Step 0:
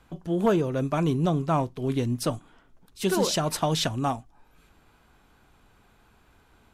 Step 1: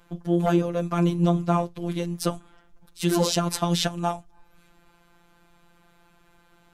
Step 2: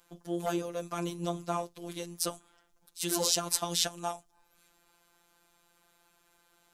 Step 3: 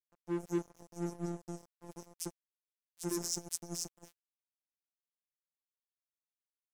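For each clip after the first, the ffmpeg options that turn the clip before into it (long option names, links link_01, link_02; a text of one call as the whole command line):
ffmpeg -i in.wav -af "afftfilt=real='hypot(re,im)*cos(PI*b)':imag='0':win_size=1024:overlap=0.75,volume=4.5dB" out.wav
ffmpeg -i in.wav -af "bass=frequency=250:gain=-11,treble=frequency=4000:gain=11,volume=-8dB" out.wav
ffmpeg -i in.wav -af "afftfilt=real='re*(1-between(b*sr/4096,470,5000))':imag='im*(1-between(b*sr/4096,470,5000))':win_size=4096:overlap=0.75,aemphasis=mode=reproduction:type=50kf,aeval=exprs='sgn(val(0))*max(abs(val(0))-0.00944,0)':channel_layout=same,volume=2dB" out.wav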